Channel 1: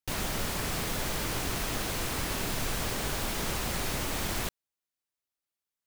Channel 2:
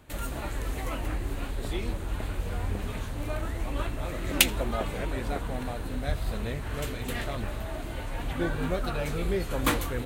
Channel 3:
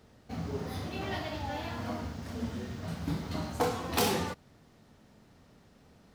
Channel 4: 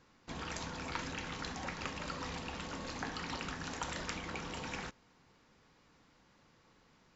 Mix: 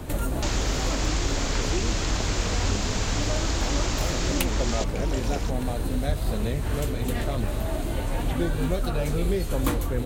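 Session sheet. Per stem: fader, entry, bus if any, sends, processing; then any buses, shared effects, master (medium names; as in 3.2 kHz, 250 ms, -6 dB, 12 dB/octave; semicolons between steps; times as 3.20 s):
+0.5 dB, 0.35 s, no send, elliptic low-pass 7.2 kHz, stop band 40 dB
-2.5 dB, 0.00 s, no send, tilt shelf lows +8.5 dB, about 1.4 kHz
-16.0 dB, 0.00 s, no send, none
-2.0 dB, 0.60 s, no send, none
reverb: none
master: tone controls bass -1 dB, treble +8 dB; three bands compressed up and down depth 70%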